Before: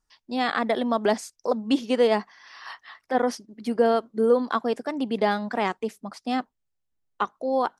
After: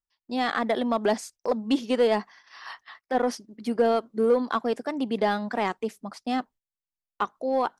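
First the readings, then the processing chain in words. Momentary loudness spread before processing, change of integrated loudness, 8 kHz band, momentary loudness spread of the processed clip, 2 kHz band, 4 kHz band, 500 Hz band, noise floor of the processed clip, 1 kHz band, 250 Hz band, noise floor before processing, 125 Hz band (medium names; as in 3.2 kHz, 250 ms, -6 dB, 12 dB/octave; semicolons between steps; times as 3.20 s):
15 LU, -1.5 dB, -0.5 dB, 14 LU, -1.5 dB, -1.5 dB, -1.5 dB, under -85 dBFS, -1.5 dB, -1.0 dB, -78 dBFS, no reading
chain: gate -47 dBFS, range -18 dB; in parallel at -6.5 dB: hard clipper -19 dBFS, distortion -11 dB; on the sum: trim -4 dB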